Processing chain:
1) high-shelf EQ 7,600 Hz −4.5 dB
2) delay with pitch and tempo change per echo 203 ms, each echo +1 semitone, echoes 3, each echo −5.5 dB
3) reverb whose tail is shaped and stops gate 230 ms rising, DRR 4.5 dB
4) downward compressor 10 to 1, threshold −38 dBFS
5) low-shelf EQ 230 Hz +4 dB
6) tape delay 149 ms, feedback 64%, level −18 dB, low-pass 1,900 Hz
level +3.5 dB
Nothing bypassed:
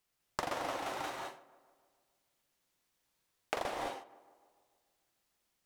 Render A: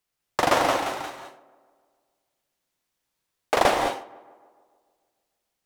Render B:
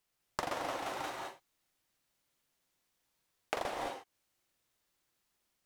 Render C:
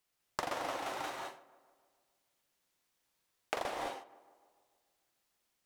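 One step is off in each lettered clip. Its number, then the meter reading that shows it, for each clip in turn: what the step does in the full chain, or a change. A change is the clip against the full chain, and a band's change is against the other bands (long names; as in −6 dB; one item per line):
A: 4, average gain reduction 11.5 dB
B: 6, change in momentary loudness spread −4 LU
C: 5, 125 Hz band −3.0 dB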